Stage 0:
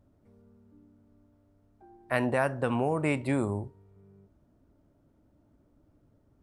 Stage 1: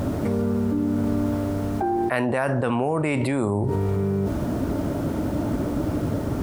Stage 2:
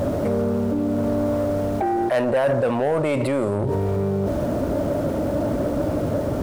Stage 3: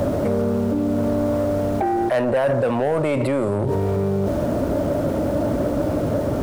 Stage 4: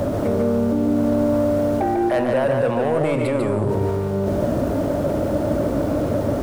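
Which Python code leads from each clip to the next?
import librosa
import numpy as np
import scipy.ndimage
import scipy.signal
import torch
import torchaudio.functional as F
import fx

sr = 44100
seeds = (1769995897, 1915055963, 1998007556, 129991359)

y1 = fx.highpass(x, sr, hz=110.0, slope=6)
y1 = fx.env_flatten(y1, sr, amount_pct=100)
y1 = y1 * 10.0 ** (2.0 / 20.0)
y2 = fx.peak_eq(y1, sr, hz=570.0, db=11.0, octaves=0.53)
y2 = fx.leveller(y2, sr, passes=2)
y2 = y2 * 10.0 ** (-7.0 / 20.0)
y3 = fx.band_squash(y2, sr, depth_pct=40)
y3 = y3 * 10.0 ** (1.0 / 20.0)
y4 = y3 + 10.0 ** (-4.0 / 20.0) * np.pad(y3, (int(146 * sr / 1000.0), 0))[:len(y3)]
y4 = y4 * 10.0 ** (-1.0 / 20.0)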